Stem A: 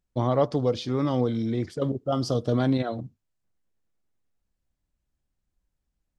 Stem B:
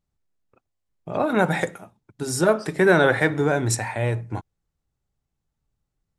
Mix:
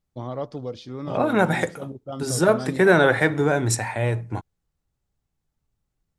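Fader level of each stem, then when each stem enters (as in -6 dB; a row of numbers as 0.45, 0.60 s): -8.0, +0.5 dB; 0.00, 0.00 s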